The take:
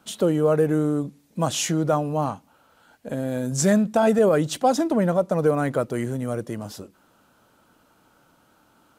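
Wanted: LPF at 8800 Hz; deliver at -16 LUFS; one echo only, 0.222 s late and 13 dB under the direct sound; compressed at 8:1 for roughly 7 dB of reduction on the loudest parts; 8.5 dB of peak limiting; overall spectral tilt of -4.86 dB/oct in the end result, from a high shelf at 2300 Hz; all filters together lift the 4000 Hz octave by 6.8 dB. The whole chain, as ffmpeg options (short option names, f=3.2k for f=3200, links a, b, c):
-af "lowpass=8.8k,highshelf=f=2.3k:g=6,equalizer=f=4k:t=o:g=3.5,acompressor=threshold=-21dB:ratio=8,alimiter=limit=-20dB:level=0:latency=1,aecho=1:1:222:0.224,volume=13.5dB"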